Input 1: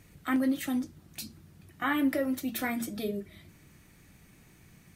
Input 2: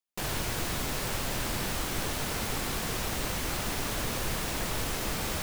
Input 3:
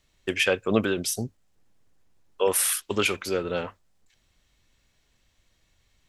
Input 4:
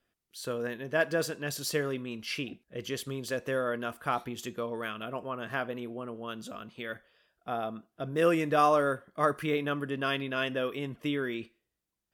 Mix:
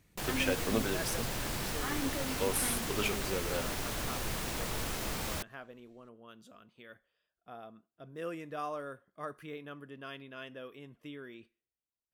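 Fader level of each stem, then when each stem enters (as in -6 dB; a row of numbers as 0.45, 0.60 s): -10.0, -4.5, -10.0, -14.5 dB; 0.00, 0.00, 0.00, 0.00 s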